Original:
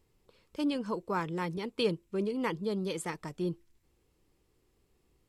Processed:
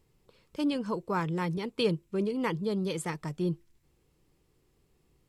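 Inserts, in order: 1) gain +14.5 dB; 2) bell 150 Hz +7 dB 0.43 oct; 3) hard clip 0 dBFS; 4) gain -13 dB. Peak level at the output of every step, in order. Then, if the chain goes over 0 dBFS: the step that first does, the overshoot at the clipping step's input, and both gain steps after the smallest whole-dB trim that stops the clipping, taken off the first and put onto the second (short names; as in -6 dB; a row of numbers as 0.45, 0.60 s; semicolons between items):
-3.0, -2.5, -2.5, -15.5 dBFS; no overload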